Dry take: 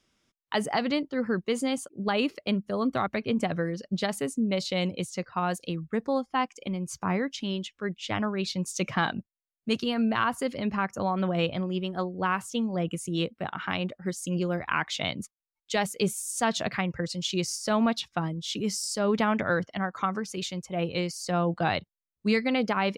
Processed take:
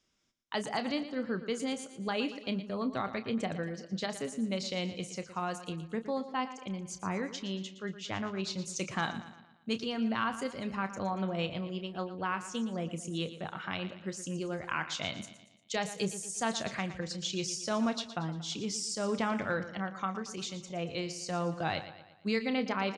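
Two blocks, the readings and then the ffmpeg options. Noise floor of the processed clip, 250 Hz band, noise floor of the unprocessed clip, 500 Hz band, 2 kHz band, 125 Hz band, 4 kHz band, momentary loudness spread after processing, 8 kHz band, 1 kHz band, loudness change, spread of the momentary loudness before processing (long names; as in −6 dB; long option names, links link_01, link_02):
−58 dBFS, −6.5 dB, below −85 dBFS, −6.5 dB, −6.0 dB, −7.0 dB, −4.5 dB, 7 LU, −3.5 dB, −6.5 dB, −6.0 dB, 7 LU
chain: -filter_complex "[0:a]lowpass=frequency=7000:width_type=q:width=1.6,asplit=2[link_01][link_02];[link_02]adelay=31,volume=-12dB[link_03];[link_01][link_03]amix=inputs=2:normalize=0,asplit=2[link_04][link_05];[link_05]aecho=0:1:116|232|348|464|580:0.224|0.11|0.0538|0.0263|0.0129[link_06];[link_04][link_06]amix=inputs=2:normalize=0,volume=-7dB"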